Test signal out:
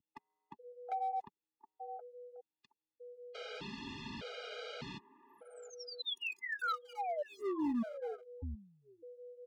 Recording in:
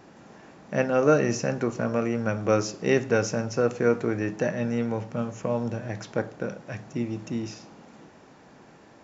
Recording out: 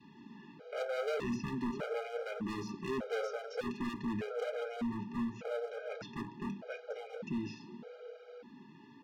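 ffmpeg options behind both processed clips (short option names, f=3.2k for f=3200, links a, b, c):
-filter_complex "[0:a]aecho=1:1:4.5:0.37,aeval=exprs='val(0)+0.00447*sin(2*PI*490*n/s)':c=same,acrossover=split=360|1400[a][b][c];[b]aecho=1:1:721|1442:0.398|0.0597[d];[c]acompressor=threshold=-36dB:ratio=16[e];[a][d][e]amix=inputs=3:normalize=0,adynamicequalizer=threshold=0.0282:dfrequency=480:dqfactor=1.1:tfrequency=480:tqfactor=1.1:attack=5:release=100:ratio=0.375:range=1.5:mode=cutabove:tftype=bell,acontrast=89,flanger=delay=0.7:depth=7.1:regen=-34:speed=0.73:shape=triangular,highpass=150,equalizer=f=180:t=q:w=4:g=-3,equalizer=f=360:t=q:w=4:g=-5,equalizer=f=740:t=q:w=4:g=-10,equalizer=f=1.9k:t=q:w=4:g=-8,lowpass=f=4.1k:w=0.5412,lowpass=f=4.1k:w=1.3066,bandreject=f=1.1k:w=5.3,volume=28.5dB,asoftclip=hard,volume=-28.5dB,afftfilt=real='re*gt(sin(2*PI*0.83*pts/sr)*(1-2*mod(floor(b*sr/1024/410),2)),0)':imag='im*gt(sin(2*PI*0.83*pts/sr)*(1-2*mod(floor(b*sr/1024/410),2)),0)':win_size=1024:overlap=0.75,volume=-3dB"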